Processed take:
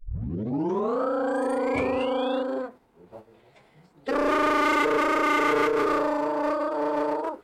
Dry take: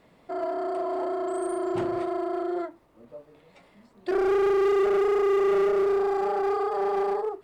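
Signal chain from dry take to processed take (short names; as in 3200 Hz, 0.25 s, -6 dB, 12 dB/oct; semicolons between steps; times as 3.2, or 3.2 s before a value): tape start at the beginning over 1.02 s; painted sound rise, 0.51–2.43, 790–3900 Hz -28 dBFS; formant-preserving pitch shift -5 st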